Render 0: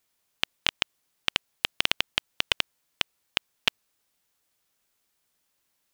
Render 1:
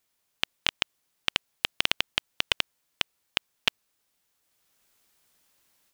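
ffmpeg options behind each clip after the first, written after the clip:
-af "dynaudnorm=f=490:g=3:m=8dB,volume=-1dB"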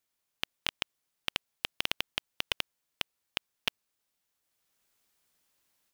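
-af "acrusher=bits=3:mode=log:mix=0:aa=0.000001,volume=-7dB"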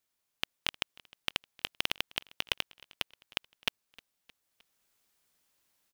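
-af "aecho=1:1:309|618|927:0.0668|0.0354|0.0188"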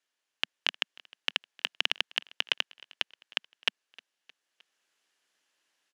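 -af "highpass=f=190:w=0.5412,highpass=f=190:w=1.3066,equalizer=f=210:t=q:w=4:g=-10,equalizer=f=1.7k:t=q:w=4:g=7,equalizer=f=2.9k:t=q:w=4:g=6,equalizer=f=8.7k:t=q:w=4:g=-7,lowpass=f=9.7k:w=0.5412,lowpass=f=9.7k:w=1.3066"

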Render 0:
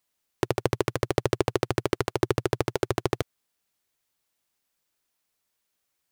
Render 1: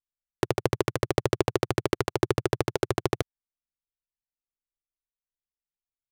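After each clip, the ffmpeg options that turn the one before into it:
-af "anlmdn=0.158"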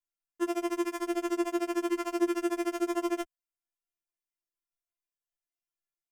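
-af "alimiter=limit=-8.5dB:level=0:latency=1,equalizer=f=4k:w=5.2:g=-14.5,afftfilt=real='re*4*eq(mod(b,16),0)':imag='im*4*eq(mod(b,16),0)':win_size=2048:overlap=0.75"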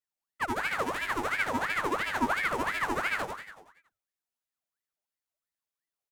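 -filter_complex "[0:a]asplit=2[a][b];[b]asplit=7[c][d][e][f][g][h][i];[c]adelay=94,afreqshift=-100,volume=-5dB[j];[d]adelay=188,afreqshift=-200,volume=-10dB[k];[e]adelay=282,afreqshift=-300,volume=-15.1dB[l];[f]adelay=376,afreqshift=-400,volume=-20.1dB[m];[g]adelay=470,afreqshift=-500,volume=-25.1dB[n];[h]adelay=564,afreqshift=-600,volume=-30.2dB[o];[i]adelay=658,afreqshift=-700,volume=-35.2dB[p];[j][k][l][m][n][o][p]amix=inputs=7:normalize=0[q];[a][q]amix=inputs=2:normalize=0,aeval=exprs='val(0)*sin(2*PI*1300*n/s+1300*0.55/2.9*sin(2*PI*2.9*n/s))':c=same,volume=1.5dB"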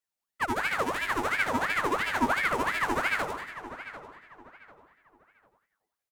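-filter_complex "[0:a]asplit=2[a][b];[b]adelay=745,lowpass=f=2.9k:p=1,volume=-12.5dB,asplit=2[c][d];[d]adelay=745,lowpass=f=2.9k:p=1,volume=0.33,asplit=2[e][f];[f]adelay=745,lowpass=f=2.9k:p=1,volume=0.33[g];[a][c][e][g]amix=inputs=4:normalize=0,volume=2dB"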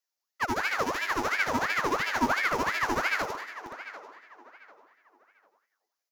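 -filter_complex "[0:a]acrossover=split=280|1400|6900[a][b][c][d];[a]acrusher=bits=6:mix=0:aa=0.000001[e];[c]aexciter=amount=2.6:drive=6.7:freq=4.8k[f];[e][b][f][d]amix=inputs=4:normalize=0"

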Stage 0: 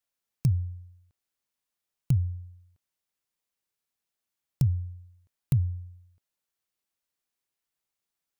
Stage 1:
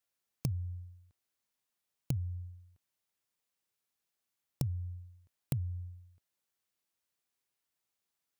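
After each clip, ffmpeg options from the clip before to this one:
-filter_complex "[0:a]highpass=47,acrossover=split=3000[a][b];[a]acompressor=threshold=-32dB:ratio=6[c];[c][b]amix=inputs=2:normalize=0"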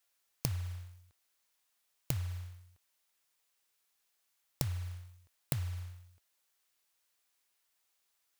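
-af "acrusher=bits=6:mode=log:mix=0:aa=0.000001,equalizer=f=160:w=0.45:g=-12,volume=8.5dB"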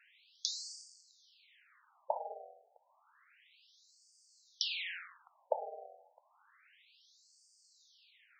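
-filter_complex "[0:a]asplit=2[a][b];[b]highpass=f=720:p=1,volume=23dB,asoftclip=type=tanh:threshold=-10.5dB[c];[a][c]amix=inputs=2:normalize=0,lowpass=f=2k:p=1,volume=-6dB,afftfilt=real='re*between(b*sr/1024,550*pow(6400/550,0.5+0.5*sin(2*PI*0.3*pts/sr))/1.41,550*pow(6400/550,0.5+0.5*sin(2*PI*0.3*pts/sr))*1.41)':imag='im*between(b*sr/1024,550*pow(6400/550,0.5+0.5*sin(2*PI*0.3*pts/sr))/1.41,550*pow(6400/550,0.5+0.5*sin(2*PI*0.3*pts/sr))*1.41)':win_size=1024:overlap=0.75,volume=9.5dB"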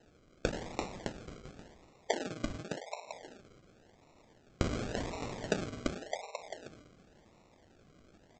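-af "aecho=1:1:340|612|829.6|1004|1143:0.631|0.398|0.251|0.158|0.1,aresample=16000,acrusher=samples=14:mix=1:aa=0.000001:lfo=1:lforange=8.4:lforate=0.91,aresample=44100,volume=3.5dB"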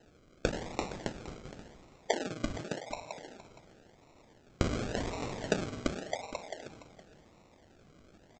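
-af "aecho=1:1:466:0.178,volume=2dB"

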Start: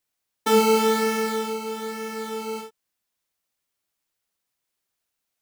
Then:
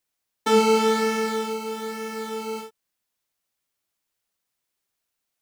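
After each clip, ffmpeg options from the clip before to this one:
-filter_complex "[0:a]acrossover=split=9000[a][b];[b]acompressor=threshold=-45dB:ratio=4:attack=1:release=60[c];[a][c]amix=inputs=2:normalize=0"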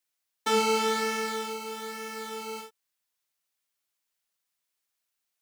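-af "tiltshelf=f=670:g=-4.5,volume=-6dB"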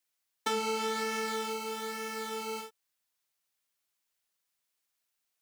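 -af "acompressor=threshold=-28dB:ratio=6"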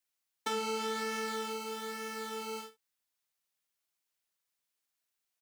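-af "aecho=1:1:50|63:0.141|0.168,volume=-3.5dB"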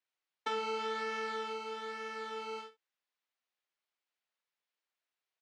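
-af "highpass=330,lowpass=3.5k"

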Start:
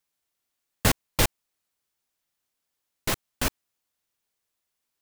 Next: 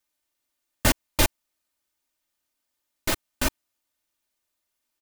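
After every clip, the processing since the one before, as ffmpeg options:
-af "aecho=1:1:3.3:0.58"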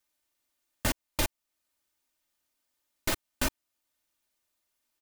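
-af "alimiter=limit=-16dB:level=0:latency=1:release=482"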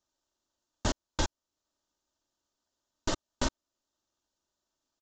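-filter_complex "[0:a]acrossover=split=3200[a][b];[a]acrusher=samples=18:mix=1:aa=0.000001[c];[c][b]amix=inputs=2:normalize=0,aresample=16000,aresample=44100"

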